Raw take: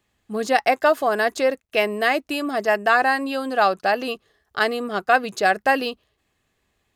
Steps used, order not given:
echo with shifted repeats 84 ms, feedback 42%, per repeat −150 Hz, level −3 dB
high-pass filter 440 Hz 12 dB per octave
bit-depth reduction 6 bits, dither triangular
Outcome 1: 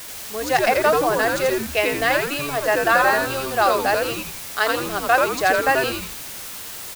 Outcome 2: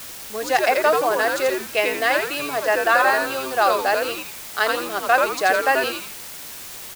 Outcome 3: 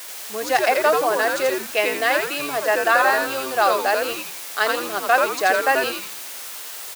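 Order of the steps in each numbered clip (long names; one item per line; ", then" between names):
high-pass filter, then bit-depth reduction, then echo with shifted repeats
echo with shifted repeats, then high-pass filter, then bit-depth reduction
bit-depth reduction, then echo with shifted repeats, then high-pass filter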